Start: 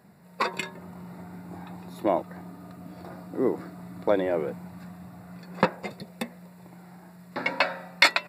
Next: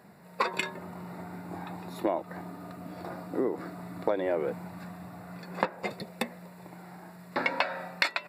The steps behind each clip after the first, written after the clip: compressor 12:1, threshold -27 dBFS, peak gain reduction 15 dB; tone controls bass -6 dB, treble -3 dB; gain +4 dB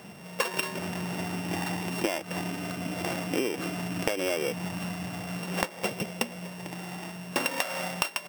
sample sorter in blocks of 16 samples; compressor 12:1, threshold -33 dBFS, peak gain reduction 14 dB; gain +8.5 dB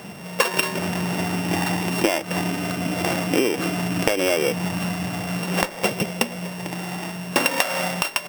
on a send at -21 dB: reverb RT60 0.50 s, pre-delay 6 ms; on the sum: maximiser +9.5 dB; gain -1 dB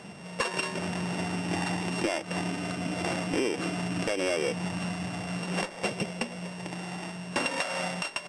hard clip -14.5 dBFS, distortion -14 dB; downsampling 22050 Hz; gain -7 dB

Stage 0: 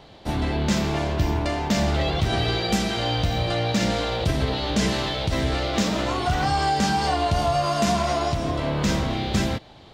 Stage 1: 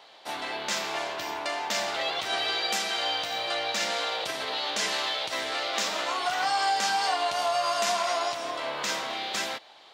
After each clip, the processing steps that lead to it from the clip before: HPF 790 Hz 12 dB/oct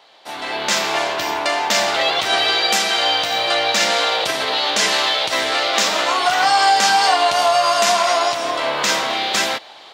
AGC gain up to 10 dB; gain +2 dB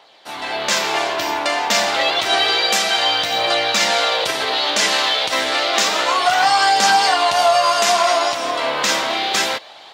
phaser 0.29 Hz, delay 4.3 ms, feedback 25%

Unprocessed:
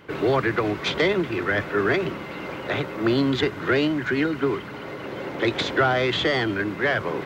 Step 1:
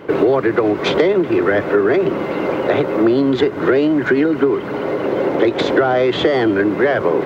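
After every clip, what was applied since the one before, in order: bell 450 Hz +13.5 dB 2.7 oct; compressor, threshold -15 dBFS, peak gain reduction 10 dB; gain +3.5 dB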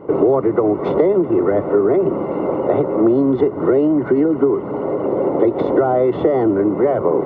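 polynomial smoothing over 65 samples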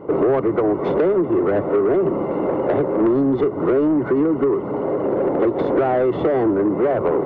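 soft clip -11.5 dBFS, distortion -15 dB

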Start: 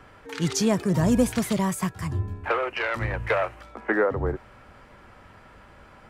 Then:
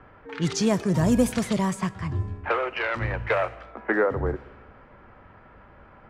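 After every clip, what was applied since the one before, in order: Schroeder reverb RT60 1.5 s, combs from 26 ms, DRR 18.5 dB; low-pass opened by the level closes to 1800 Hz, open at -17.5 dBFS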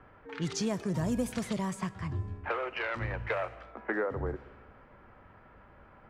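compressor 2:1, threshold -25 dBFS, peak gain reduction 6 dB; gain -5.5 dB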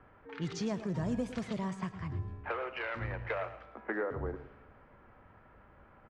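air absorption 95 m; echo 0.111 s -12.5 dB; gain -3 dB

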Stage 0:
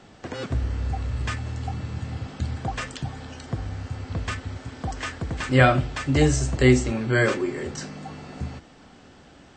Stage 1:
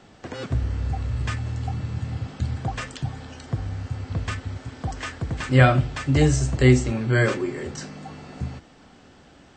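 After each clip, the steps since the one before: dynamic EQ 120 Hz, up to +5 dB, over -37 dBFS, Q 1.3; gain -1 dB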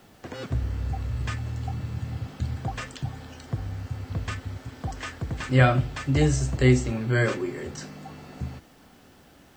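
added noise white -63 dBFS; gain -3 dB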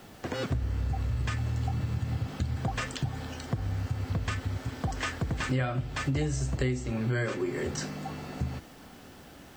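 compressor 8:1, threshold -30 dBFS, peak gain reduction 17.5 dB; gain +4 dB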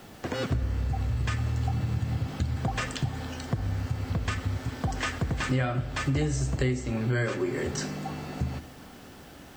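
reverb RT60 1.3 s, pre-delay 58 ms, DRR 14.5 dB; gain +2 dB

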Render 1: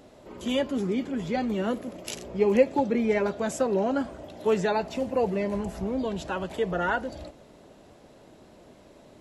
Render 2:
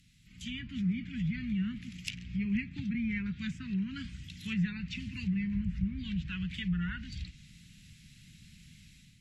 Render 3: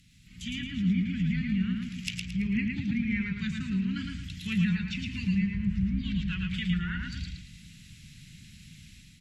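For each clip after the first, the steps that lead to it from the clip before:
elliptic band-stop 170–2200 Hz, stop band 80 dB; treble ducked by the level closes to 1500 Hz, closed at -35 dBFS; AGC gain up to 9 dB; gain -3.5 dB
feedback echo 0.111 s, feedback 31%, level -3.5 dB; gain +3.5 dB

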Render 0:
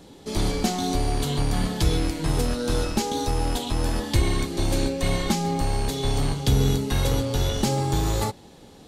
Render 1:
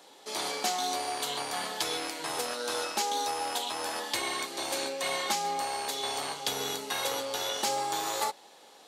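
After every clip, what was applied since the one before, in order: Chebyshev high-pass 760 Hz, order 2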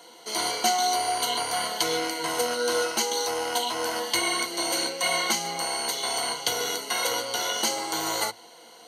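ripple EQ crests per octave 1.9, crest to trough 14 dB; gain +3.5 dB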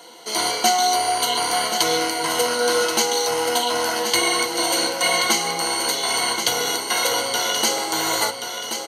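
feedback echo 1.079 s, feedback 39%, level -7.5 dB; gain +5.5 dB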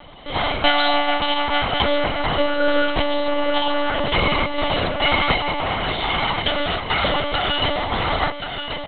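monotone LPC vocoder at 8 kHz 290 Hz; gain +3 dB

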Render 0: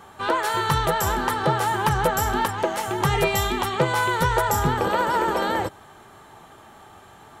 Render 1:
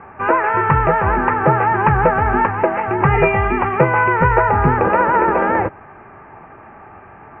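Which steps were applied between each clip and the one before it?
steep low-pass 2600 Hz 96 dB/oct; gain +7.5 dB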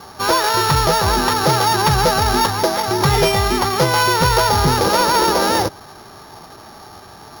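sample sorter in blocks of 8 samples; sine folder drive 5 dB, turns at -1 dBFS; gain -8 dB

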